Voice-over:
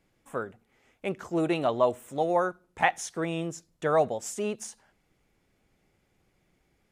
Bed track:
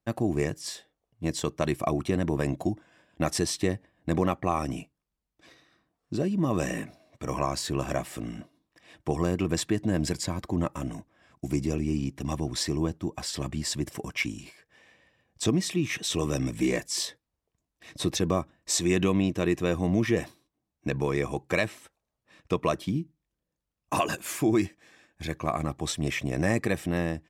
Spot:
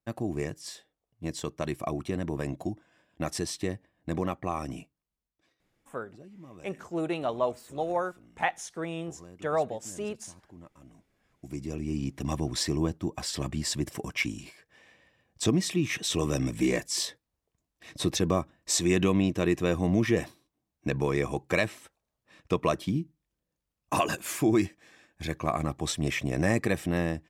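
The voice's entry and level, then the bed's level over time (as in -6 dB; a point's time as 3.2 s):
5.60 s, -4.0 dB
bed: 5.27 s -5 dB
5.57 s -22.5 dB
10.73 s -22.5 dB
12.15 s 0 dB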